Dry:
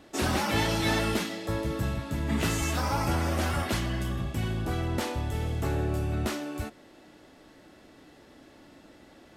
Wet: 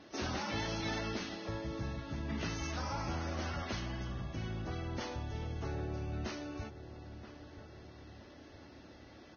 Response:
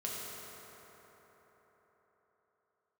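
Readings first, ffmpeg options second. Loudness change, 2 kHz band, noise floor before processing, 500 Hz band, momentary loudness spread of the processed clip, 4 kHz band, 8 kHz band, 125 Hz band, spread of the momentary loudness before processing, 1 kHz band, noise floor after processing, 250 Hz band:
−10.0 dB, −10.0 dB, −55 dBFS, −10.0 dB, 17 LU, −9.0 dB, −12.0 dB, −10.0 dB, 6 LU, −10.0 dB, −56 dBFS, −10.0 dB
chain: -filter_complex "[0:a]asplit=2[link_01][link_02];[link_02]adelay=974,lowpass=frequency=1800:poles=1,volume=-16dB,asplit=2[link_03][link_04];[link_04]adelay=974,lowpass=frequency=1800:poles=1,volume=0.43,asplit=2[link_05][link_06];[link_06]adelay=974,lowpass=frequency=1800:poles=1,volume=0.43,asplit=2[link_07][link_08];[link_08]adelay=974,lowpass=frequency=1800:poles=1,volume=0.43[link_09];[link_01][link_03][link_05][link_07][link_09]amix=inputs=5:normalize=0,acompressor=threshold=-47dB:ratio=1.5,volume=-2.5dB" -ar 16000 -c:a libvorbis -b:a 16k

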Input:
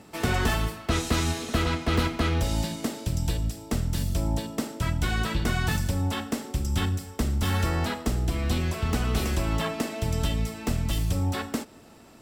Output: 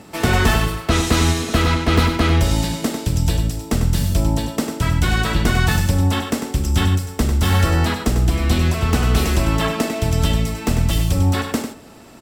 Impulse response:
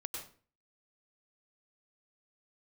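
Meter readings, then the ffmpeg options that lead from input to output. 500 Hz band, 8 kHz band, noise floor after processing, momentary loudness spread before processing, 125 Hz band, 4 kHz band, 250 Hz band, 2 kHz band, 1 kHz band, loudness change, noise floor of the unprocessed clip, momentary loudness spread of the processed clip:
+8.5 dB, +8.5 dB, −36 dBFS, 5 LU, +9.5 dB, +8.5 dB, +8.5 dB, +9.0 dB, +8.5 dB, +9.0 dB, −50 dBFS, 5 LU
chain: -af "aecho=1:1:98:0.398,volume=8dB"

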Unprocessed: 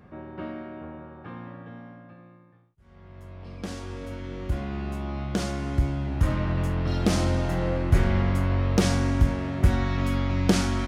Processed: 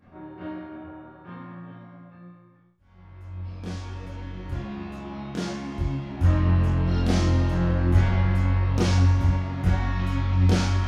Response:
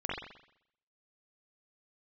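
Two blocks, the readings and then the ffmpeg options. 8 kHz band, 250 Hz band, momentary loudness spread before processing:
−4.0 dB, −0.5 dB, 18 LU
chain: -filter_complex "[0:a]flanger=delay=3.4:depth=9.6:regen=55:speed=0.71:shape=triangular[link_01];[1:a]atrim=start_sample=2205,asetrate=83790,aresample=44100[link_02];[link_01][link_02]afir=irnorm=-1:irlink=0,volume=3dB"

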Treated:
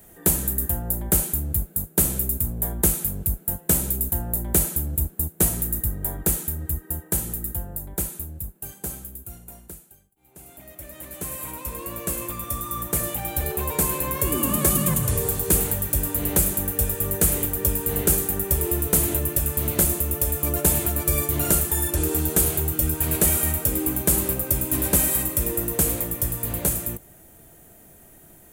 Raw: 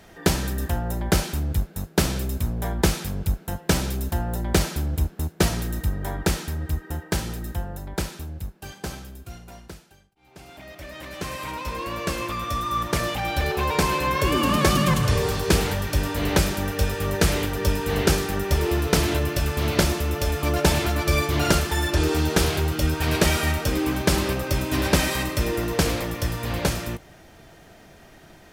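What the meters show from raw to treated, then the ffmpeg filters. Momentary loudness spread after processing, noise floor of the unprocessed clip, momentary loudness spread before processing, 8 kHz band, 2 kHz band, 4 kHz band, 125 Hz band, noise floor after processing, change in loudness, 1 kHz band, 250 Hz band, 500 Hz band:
12 LU, −50 dBFS, 12 LU, +8.0 dB, −9.0 dB, −9.5 dB, −3.0 dB, −50 dBFS, +2.0 dB, −7.5 dB, −3.0 dB, −4.0 dB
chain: -filter_complex "[0:a]acrossover=split=640[link_01][link_02];[link_01]acontrast=62[link_03];[link_03][link_02]amix=inputs=2:normalize=0,aexciter=amount=13.4:drive=3.9:freq=7500,volume=-9dB"

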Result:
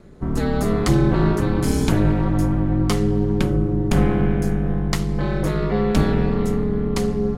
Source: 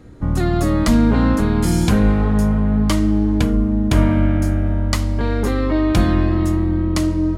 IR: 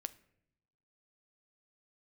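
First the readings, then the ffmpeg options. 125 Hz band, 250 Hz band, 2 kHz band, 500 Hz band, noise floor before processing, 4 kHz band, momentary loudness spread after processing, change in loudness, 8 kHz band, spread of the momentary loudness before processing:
−2.0 dB, −4.0 dB, −3.0 dB, +1.5 dB, −19 dBFS, −3.5 dB, 4 LU, −3.0 dB, −3.0 dB, 4 LU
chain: -af "aeval=exprs='val(0)*sin(2*PI*100*n/s)':channel_layout=same"

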